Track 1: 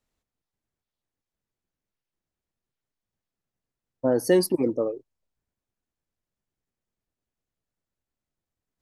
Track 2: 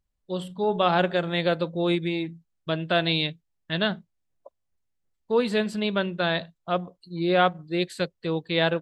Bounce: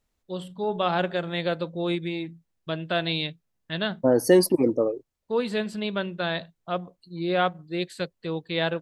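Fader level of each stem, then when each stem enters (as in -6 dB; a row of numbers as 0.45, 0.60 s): +2.5, -3.0 dB; 0.00, 0.00 s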